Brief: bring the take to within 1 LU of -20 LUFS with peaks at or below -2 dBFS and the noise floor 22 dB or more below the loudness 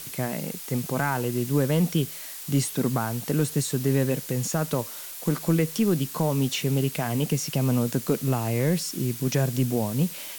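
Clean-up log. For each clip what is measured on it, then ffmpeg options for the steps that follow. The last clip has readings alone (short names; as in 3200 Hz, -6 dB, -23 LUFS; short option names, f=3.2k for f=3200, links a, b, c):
noise floor -38 dBFS; noise floor target -48 dBFS; loudness -26.0 LUFS; peak -11.0 dBFS; loudness target -20.0 LUFS
-> -af "afftdn=nr=10:nf=-38"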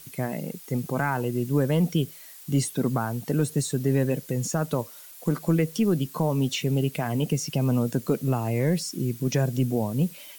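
noise floor -46 dBFS; noise floor target -48 dBFS
-> -af "afftdn=nr=6:nf=-46"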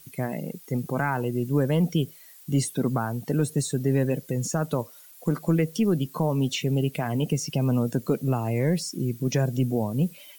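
noise floor -50 dBFS; loudness -26.5 LUFS; peak -12.0 dBFS; loudness target -20.0 LUFS
-> -af "volume=6.5dB"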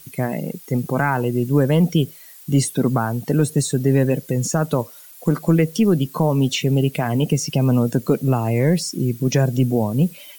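loudness -20.0 LUFS; peak -5.5 dBFS; noise floor -43 dBFS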